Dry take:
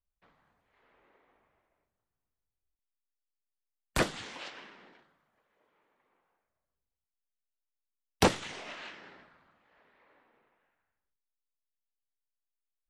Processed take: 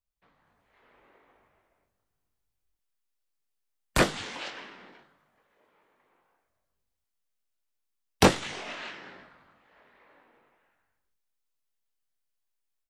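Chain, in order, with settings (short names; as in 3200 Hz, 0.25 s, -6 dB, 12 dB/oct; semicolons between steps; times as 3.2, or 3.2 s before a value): AGC gain up to 7 dB; doubler 21 ms -8 dB; gain -2 dB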